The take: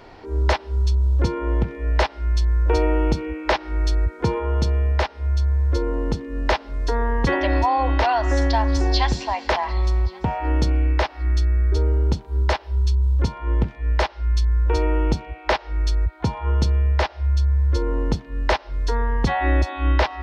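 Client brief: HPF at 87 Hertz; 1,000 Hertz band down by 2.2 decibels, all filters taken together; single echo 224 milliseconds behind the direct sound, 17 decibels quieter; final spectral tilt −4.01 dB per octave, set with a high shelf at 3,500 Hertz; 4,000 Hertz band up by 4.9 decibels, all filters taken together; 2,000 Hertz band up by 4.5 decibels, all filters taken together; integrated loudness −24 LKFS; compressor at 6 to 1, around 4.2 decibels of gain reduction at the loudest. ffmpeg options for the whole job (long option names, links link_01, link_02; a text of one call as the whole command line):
ffmpeg -i in.wav -af "highpass=87,equalizer=frequency=1000:width_type=o:gain=-4,equalizer=frequency=2000:width_type=o:gain=6,highshelf=frequency=3500:gain=-6,equalizer=frequency=4000:width_type=o:gain=8.5,acompressor=threshold=-22dB:ratio=6,aecho=1:1:224:0.141,volume=4dB" out.wav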